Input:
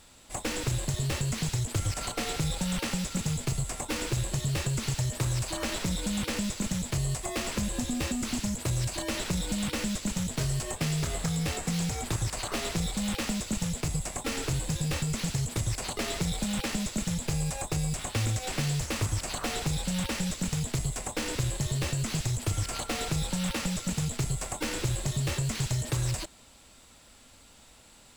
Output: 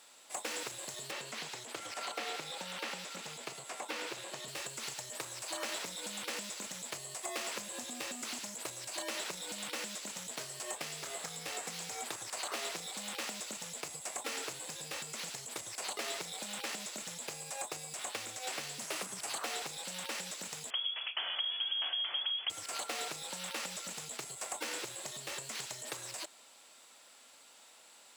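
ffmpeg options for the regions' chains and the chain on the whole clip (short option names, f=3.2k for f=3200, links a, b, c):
-filter_complex "[0:a]asettb=1/sr,asplit=3[a][b][c];[a]atrim=end=1.114[d];[b]atrim=start=1.11:end=4.48,asetpts=PTS-STARTPTS,afade=t=in:d=0.004:c=qsin,afade=t=out:st=3.366:d=0.004:c=qsin,highpass=150,acrossover=split=4600[e][f];[f]acompressor=threshold=-47dB:ratio=4:attack=1:release=60[g];[e][g]amix=inputs=2:normalize=0[h];[c]atrim=start=4.476[i];[d][h]acrossfade=d=0.004:c1=hsin:c2=qsin[j];[j][i]acrossfade=d=0.004:c1=qsin:c2=hsin,asettb=1/sr,asplit=3[k][l][m];[k]atrim=end=18.784[n];[l]atrim=start=18.78:end=19.38,asetpts=PTS-STARTPTS,afade=t=in:d=0.004:c=qsin,afade=t=out:st=0.596:d=0.004:c=qsin,equalizer=f=10k:w=2.2:g=4,afreqshift=85[o];[m]atrim=start=19.376[p];[n][o]acrossfade=d=0.004:c1=hsin:c2=qsin[q];[q][p]acrossfade=d=0.004:c1=qsin:c2=hsin,asettb=1/sr,asplit=3[r][s][t];[r]atrim=end=20.704[u];[s]atrim=start=20.7:end=22.5,asetpts=PTS-STARTPTS,afade=t=in:d=0.004:c=qsin,afade=t=out:st=1.796:d=0.004:c=qsin,lowpass=f=2.9k:t=q:w=0.5098,lowpass=f=2.9k:t=q:w=0.6013,lowpass=f=2.9k:t=q:w=0.9,lowpass=f=2.9k:t=q:w=2.563,afreqshift=-3400,asubboost=boost=4:cutoff=180[v];[t]atrim=start=22.496[w];[u][v]acrossfade=d=0.004:c1=hsin:c2=qsin[x];[x][w]acrossfade=d=0.004:c1=qsin:c2=hsin,acompressor=threshold=-30dB:ratio=6,highpass=510,volume=-2dB"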